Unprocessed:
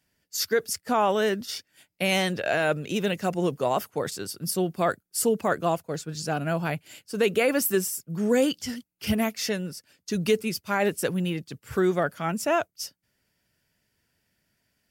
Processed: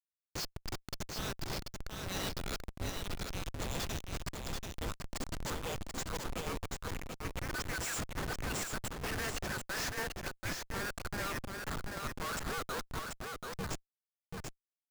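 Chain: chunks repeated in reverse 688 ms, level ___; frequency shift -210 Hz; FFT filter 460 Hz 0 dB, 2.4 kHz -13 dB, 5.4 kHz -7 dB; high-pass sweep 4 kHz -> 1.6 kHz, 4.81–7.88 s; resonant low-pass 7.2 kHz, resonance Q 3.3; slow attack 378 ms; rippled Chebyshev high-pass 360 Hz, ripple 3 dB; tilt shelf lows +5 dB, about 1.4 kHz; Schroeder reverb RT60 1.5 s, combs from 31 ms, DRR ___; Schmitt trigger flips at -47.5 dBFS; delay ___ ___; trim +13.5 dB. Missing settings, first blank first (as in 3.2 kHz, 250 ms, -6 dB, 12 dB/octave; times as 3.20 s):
-5 dB, 18 dB, 736 ms, -4.5 dB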